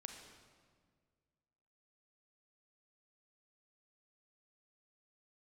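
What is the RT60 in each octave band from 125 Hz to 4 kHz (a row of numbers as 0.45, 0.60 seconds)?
2.3, 2.1, 2.0, 1.6, 1.4, 1.3 seconds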